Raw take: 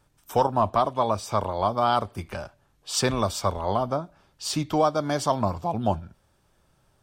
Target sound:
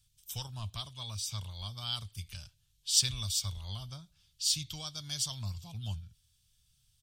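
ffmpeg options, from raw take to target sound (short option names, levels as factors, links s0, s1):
-af "firequalizer=gain_entry='entry(110,0);entry(270,-25);entry(560,-28);entry(3200,7)':delay=0.05:min_phase=1,volume=0.531"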